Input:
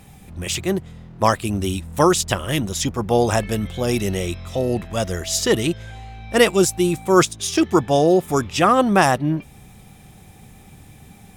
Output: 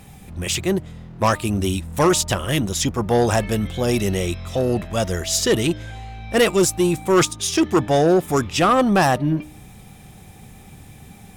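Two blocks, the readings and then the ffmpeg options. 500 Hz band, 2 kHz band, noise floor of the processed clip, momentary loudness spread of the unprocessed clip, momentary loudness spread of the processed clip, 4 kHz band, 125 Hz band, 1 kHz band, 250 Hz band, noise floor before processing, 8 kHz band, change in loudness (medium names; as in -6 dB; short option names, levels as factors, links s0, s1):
-0.5 dB, -0.5 dB, -44 dBFS, 10 LU, 8 LU, +0.5 dB, +1.0 dB, -1.0 dB, 0.0 dB, -46 dBFS, +1.0 dB, 0.0 dB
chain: -af "bandreject=f=304.5:t=h:w=4,bandreject=f=609:t=h:w=4,bandreject=f=913.5:t=h:w=4,bandreject=f=1218:t=h:w=4,asoftclip=type=tanh:threshold=0.266,volume=1.26"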